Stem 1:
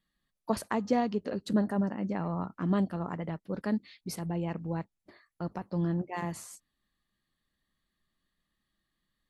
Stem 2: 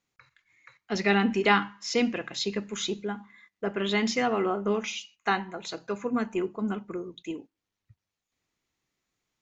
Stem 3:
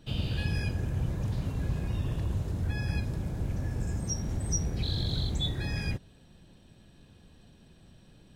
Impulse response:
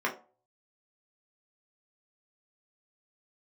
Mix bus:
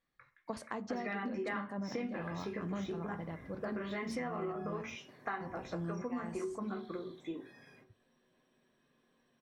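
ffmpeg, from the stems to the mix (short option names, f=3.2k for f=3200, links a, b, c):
-filter_complex "[0:a]lowpass=f=9.2k:w=0.5412,lowpass=f=9.2k:w=1.3066,volume=-8dB,asplit=3[a][b][c];[b]volume=-16.5dB[d];[1:a]deesser=0.75,highshelf=f=8.1k:g=10,volume=-5dB,asplit=2[e][f];[f]volume=-13dB[g];[2:a]highpass=f=290:p=1,highshelf=f=6.3k:g=8.5,acompressor=threshold=-42dB:ratio=5,adelay=1850,volume=-8dB,asplit=2[h][i];[i]volume=-11dB[j];[c]apad=whole_len=449913[k];[h][k]sidechaingate=range=-33dB:threshold=-58dB:ratio=16:detection=peak[l];[e][l]amix=inputs=2:normalize=0,lowpass=f=2.4k:w=0.5412,lowpass=f=2.4k:w=1.3066,acompressor=threshold=-33dB:ratio=6,volume=0dB[m];[3:a]atrim=start_sample=2205[n];[d][g][j]amix=inputs=3:normalize=0[o];[o][n]afir=irnorm=-1:irlink=0[p];[a][m][p]amix=inputs=3:normalize=0,acompressor=threshold=-35dB:ratio=6"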